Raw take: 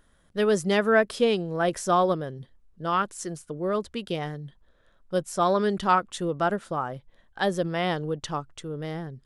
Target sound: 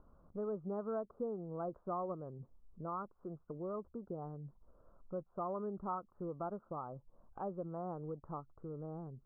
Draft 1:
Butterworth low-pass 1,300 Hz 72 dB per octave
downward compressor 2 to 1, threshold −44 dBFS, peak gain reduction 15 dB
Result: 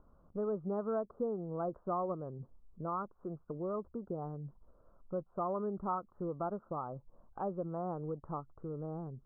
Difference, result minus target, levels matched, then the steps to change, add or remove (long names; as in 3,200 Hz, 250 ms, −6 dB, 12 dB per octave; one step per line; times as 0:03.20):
downward compressor: peak gain reduction −4 dB
change: downward compressor 2 to 1, threshold −52 dBFS, peak gain reduction 19 dB